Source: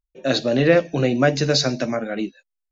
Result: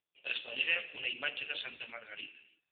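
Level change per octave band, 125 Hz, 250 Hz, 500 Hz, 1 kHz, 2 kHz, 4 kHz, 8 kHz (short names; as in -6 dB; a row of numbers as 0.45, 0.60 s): under -40 dB, -37.0 dB, -30.5 dB, -23.0 dB, -8.5 dB, -12.0 dB, n/a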